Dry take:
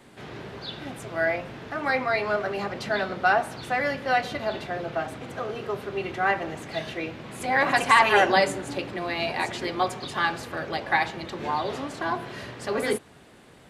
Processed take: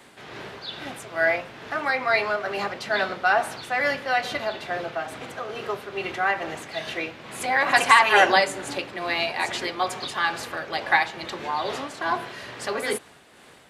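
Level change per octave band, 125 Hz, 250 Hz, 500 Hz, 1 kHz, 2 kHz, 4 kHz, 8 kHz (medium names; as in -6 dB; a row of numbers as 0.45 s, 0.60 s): -5.5 dB, -3.0 dB, 0.0 dB, +1.5 dB, +3.0 dB, +4.0 dB, +4.5 dB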